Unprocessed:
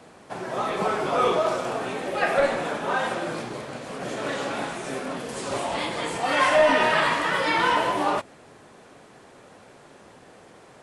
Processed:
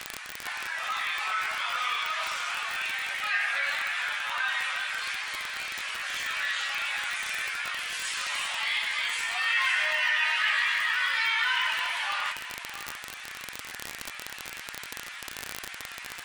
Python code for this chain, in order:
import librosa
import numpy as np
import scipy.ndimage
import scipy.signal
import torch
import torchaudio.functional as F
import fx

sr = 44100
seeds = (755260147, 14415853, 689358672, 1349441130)

p1 = fx.high_shelf(x, sr, hz=3600.0, db=-11.5)
p2 = 10.0 ** (-25.0 / 20.0) * np.tanh(p1 / 10.0 ** (-25.0 / 20.0))
p3 = p1 + F.gain(torch.from_numpy(p2), -6.0).numpy()
p4 = fx.ladder_highpass(p3, sr, hz=1600.0, resonance_pct=25)
p5 = fx.stretch_vocoder_free(p4, sr, factor=1.5)
p6 = fx.dmg_crackle(p5, sr, seeds[0], per_s=39.0, level_db=-39.0)
p7 = p6 + fx.echo_single(p6, sr, ms=660, db=-20.5, dry=0)
p8 = fx.env_flatten(p7, sr, amount_pct=50)
y = F.gain(torch.from_numpy(p8), 8.0).numpy()